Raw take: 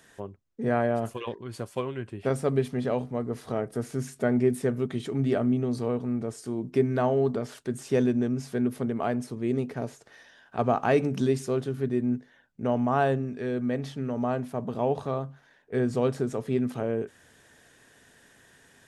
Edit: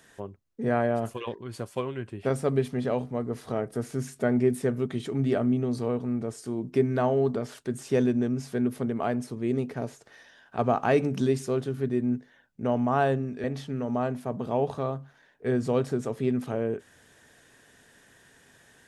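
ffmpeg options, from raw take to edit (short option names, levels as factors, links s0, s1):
-filter_complex "[0:a]asplit=2[s0][s1];[s0]atrim=end=13.442[s2];[s1]atrim=start=13.718[s3];[s2][s3]acrossfade=d=0.004:c1=hsin:c2=hsin"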